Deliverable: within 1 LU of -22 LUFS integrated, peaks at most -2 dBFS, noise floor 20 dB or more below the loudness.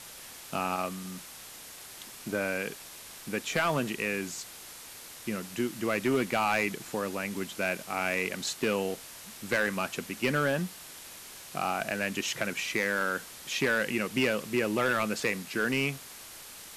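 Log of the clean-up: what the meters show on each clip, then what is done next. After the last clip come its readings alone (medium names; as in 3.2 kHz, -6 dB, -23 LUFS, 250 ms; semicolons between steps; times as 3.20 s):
clipped samples 0.7%; clipping level -20.0 dBFS; noise floor -47 dBFS; noise floor target -51 dBFS; loudness -30.5 LUFS; peak level -20.0 dBFS; loudness target -22.0 LUFS
-> clip repair -20 dBFS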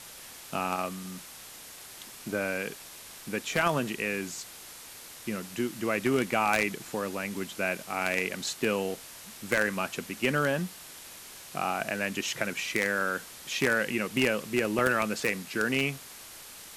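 clipped samples 0.0%; noise floor -47 dBFS; noise floor target -50 dBFS
-> noise reduction 6 dB, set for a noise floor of -47 dBFS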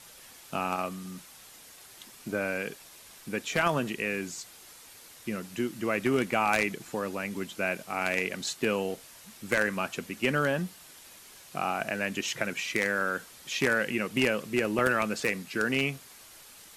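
noise floor -52 dBFS; loudness -30.0 LUFS; peak level -11.0 dBFS; loudness target -22.0 LUFS
-> trim +8 dB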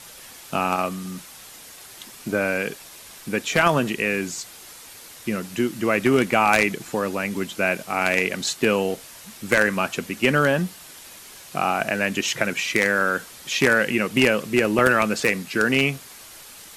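loudness -22.0 LUFS; peak level -3.0 dBFS; noise floor -44 dBFS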